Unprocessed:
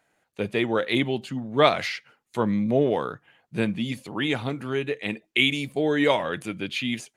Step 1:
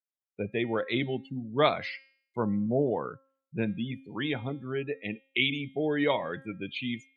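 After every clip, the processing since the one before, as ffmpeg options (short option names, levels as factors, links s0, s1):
-af "afftdn=nr=35:nf=-32,lowshelf=f=81:g=5.5,bandreject=f=268.7:t=h:w=4,bandreject=f=537.4:t=h:w=4,bandreject=f=806.1:t=h:w=4,bandreject=f=1074.8:t=h:w=4,bandreject=f=1343.5:t=h:w=4,bandreject=f=1612.2:t=h:w=4,bandreject=f=1880.9:t=h:w=4,bandreject=f=2149.6:t=h:w=4,bandreject=f=2418.3:t=h:w=4,bandreject=f=2687:t=h:w=4,bandreject=f=2955.7:t=h:w=4,bandreject=f=3224.4:t=h:w=4,bandreject=f=3493.1:t=h:w=4,bandreject=f=3761.8:t=h:w=4,bandreject=f=4030.5:t=h:w=4,bandreject=f=4299.2:t=h:w=4,bandreject=f=4567.9:t=h:w=4,bandreject=f=4836.6:t=h:w=4,bandreject=f=5105.3:t=h:w=4,bandreject=f=5374:t=h:w=4,volume=0.531"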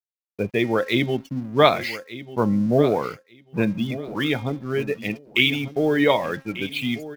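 -af "aeval=exprs='sgn(val(0))*max(abs(val(0))-0.00211,0)':c=same,aexciter=amount=2.4:drive=3.1:freq=4700,aecho=1:1:1192|2384:0.178|0.0302,volume=2.66"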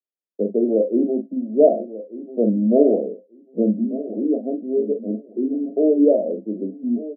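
-filter_complex "[0:a]asuperpass=centerf=360:order=20:qfactor=0.75,asplit=2[s0][s1];[s1]adelay=42,volume=0.422[s2];[s0][s2]amix=inputs=2:normalize=0,volume=1.5"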